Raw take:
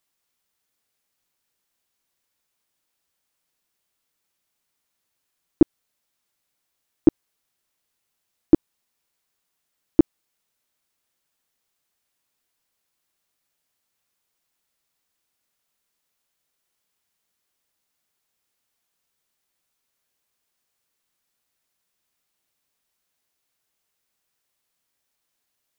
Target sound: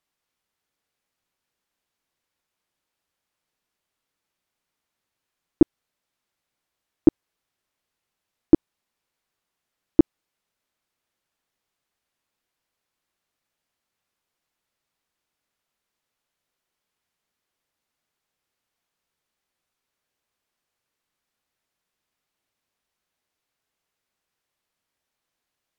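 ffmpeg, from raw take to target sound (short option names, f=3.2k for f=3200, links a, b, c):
-af "aemphasis=mode=reproduction:type=cd"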